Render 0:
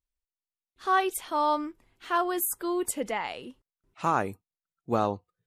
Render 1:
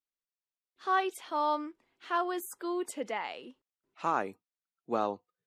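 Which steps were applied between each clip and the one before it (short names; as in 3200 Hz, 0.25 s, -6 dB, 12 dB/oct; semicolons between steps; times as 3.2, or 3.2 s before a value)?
three-band isolator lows -21 dB, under 190 Hz, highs -13 dB, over 6800 Hz; gain -4 dB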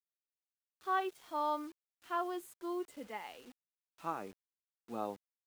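harmonic-percussive split percussive -14 dB; bit-crush 9-bit; gain -5 dB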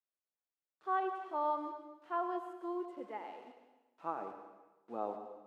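band-pass 620 Hz, Q 0.74; plate-style reverb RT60 1.1 s, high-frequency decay 0.95×, pre-delay 85 ms, DRR 7 dB; gain +1.5 dB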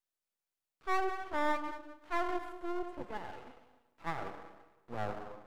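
half-wave rectifier; gain +6 dB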